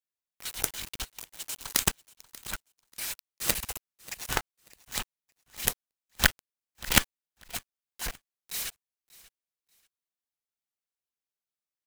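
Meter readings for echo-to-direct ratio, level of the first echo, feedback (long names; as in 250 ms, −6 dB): −21.0 dB, −21.0 dB, 23%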